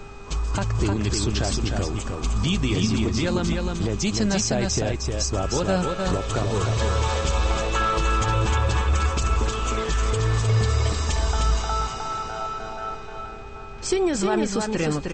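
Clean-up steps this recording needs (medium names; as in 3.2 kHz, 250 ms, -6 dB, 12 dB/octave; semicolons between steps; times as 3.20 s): de-hum 400.6 Hz, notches 16; band-stop 2.5 kHz, Q 30; noise print and reduce 30 dB; inverse comb 307 ms -4 dB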